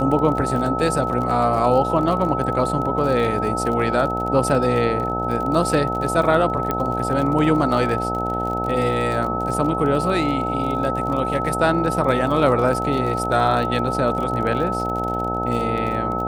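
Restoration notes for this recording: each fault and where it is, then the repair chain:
buzz 60 Hz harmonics 15 -26 dBFS
crackle 44 per s -27 dBFS
whine 1.3 kHz -24 dBFS
6.71 s: pop -9 dBFS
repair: de-click; de-hum 60 Hz, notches 15; band-stop 1.3 kHz, Q 30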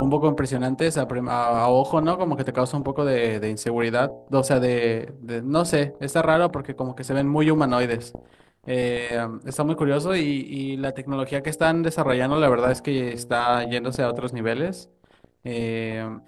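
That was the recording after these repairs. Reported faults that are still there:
nothing left

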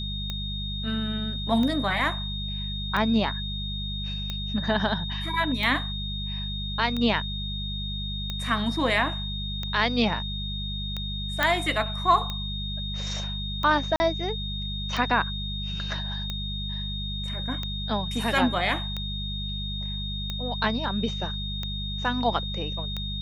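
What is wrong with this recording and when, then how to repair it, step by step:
hum 50 Hz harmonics 4 -33 dBFS
tick 45 rpm -17 dBFS
whine 3.7 kHz -33 dBFS
11.43 s: pop -9 dBFS
13.96–14.00 s: dropout 40 ms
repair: de-click; band-stop 3.7 kHz, Q 30; de-hum 50 Hz, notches 4; interpolate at 13.96 s, 40 ms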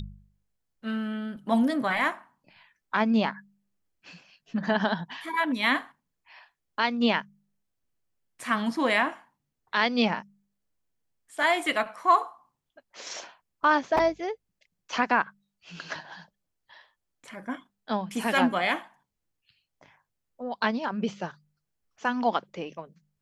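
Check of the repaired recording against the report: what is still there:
nothing left

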